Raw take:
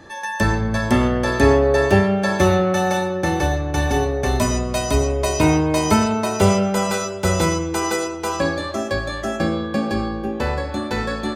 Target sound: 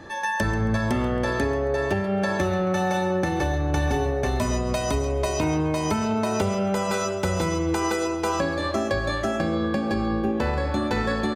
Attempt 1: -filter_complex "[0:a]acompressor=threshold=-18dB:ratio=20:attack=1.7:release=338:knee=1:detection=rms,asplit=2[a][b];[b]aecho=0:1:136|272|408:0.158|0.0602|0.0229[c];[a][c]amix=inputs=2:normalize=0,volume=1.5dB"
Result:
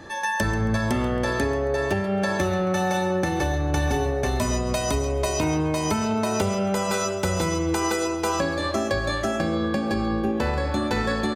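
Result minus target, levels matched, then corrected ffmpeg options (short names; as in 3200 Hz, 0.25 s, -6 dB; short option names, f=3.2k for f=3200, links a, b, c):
8000 Hz band +3.5 dB
-filter_complex "[0:a]acompressor=threshold=-18dB:ratio=20:attack=1.7:release=338:knee=1:detection=rms,highshelf=f=4.6k:g=-5.5,asplit=2[a][b];[b]aecho=0:1:136|272|408:0.158|0.0602|0.0229[c];[a][c]amix=inputs=2:normalize=0,volume=1.5dB"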